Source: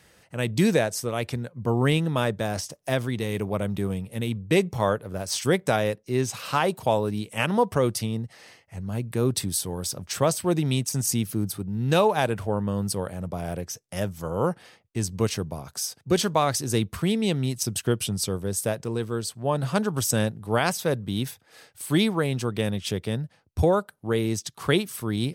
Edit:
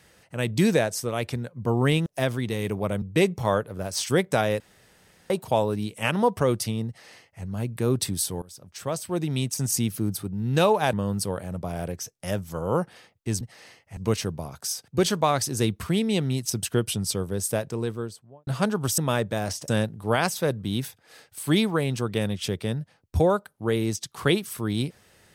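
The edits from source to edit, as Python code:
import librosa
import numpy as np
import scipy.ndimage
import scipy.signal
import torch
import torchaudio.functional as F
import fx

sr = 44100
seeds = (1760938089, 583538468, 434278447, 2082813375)

y = fx.studio_fade_out(x, sr, start_s=18.9, length_s=0.7)
y = fx.edit(y, sr, fx.move(start_s=2.06, length_s=0.7, to_s=20.11),
    fx.cut(start_s=3.72, length_s=0.65),
    fx.room_tone_fill(start_s=5.95, length_s=0.7),
    fx.duplicate(start_s=8.22, length_s=0.56, to_s=15.1),
    fx.fade_in_from(start_s=9.77, length_s=1.27, floor_db=-20.0),
    fx.cut(start_s=12.28, length_s=0.34), tone=tone)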